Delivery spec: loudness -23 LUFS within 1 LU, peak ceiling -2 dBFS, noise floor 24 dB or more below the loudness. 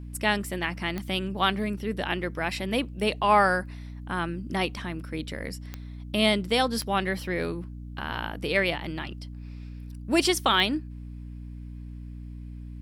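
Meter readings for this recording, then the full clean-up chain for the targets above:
clicks found 4; hum 60 Hz; highest harmonic 300 Hz; hum level -36 dBFS; loudness -27.0 LUFS; peak level -8.0 dBFS; loudness target -23.0 LUFS
-> de-click; hum notches 60/120/180/240/300 Hz; trim +4 dB

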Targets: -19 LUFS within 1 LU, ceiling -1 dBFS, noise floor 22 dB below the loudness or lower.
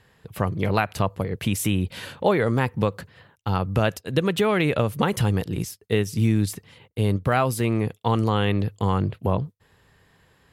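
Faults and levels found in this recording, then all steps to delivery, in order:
loudness -24.0 LUFS; peak level -7.0 dBFS; loudness target -19.0 LUFS
-> trim +5 dB

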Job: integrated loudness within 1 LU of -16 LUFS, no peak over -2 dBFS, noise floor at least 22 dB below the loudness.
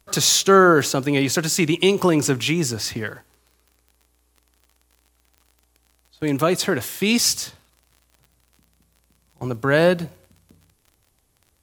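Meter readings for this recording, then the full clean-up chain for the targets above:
tick rate 32 per s; loudness -19.0 LUFS; peak level -2.0 dBFS; loudness target -16.0 LUFS
-> de-click; trim +3 dB; peak limiter -2 dBFS

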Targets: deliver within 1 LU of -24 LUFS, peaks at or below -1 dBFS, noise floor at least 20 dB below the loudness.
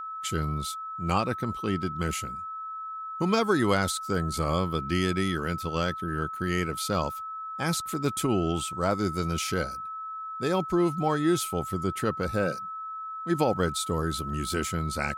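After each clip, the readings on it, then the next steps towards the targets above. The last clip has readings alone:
steady tone 1.3 kHz; tone level -34 dBFS; loudness -28.5 LUFS; peak level -11.0 dBFS; loudness target -24.0 LUFS
-> band-stop 1.3 kHz, Q 30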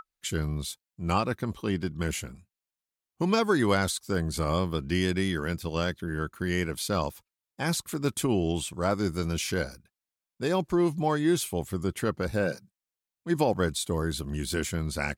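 steady tone not found; loudness -29.0 LUFS; peak level -11.5 dBFS; loudness target -24.0 LUFS
-> trim +5 dB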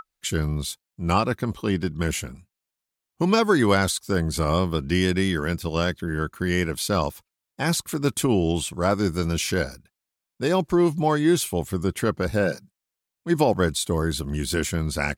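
loudness -24.0 LUFS; peak level -6.5 dBFS; noise floor -86 dBFS

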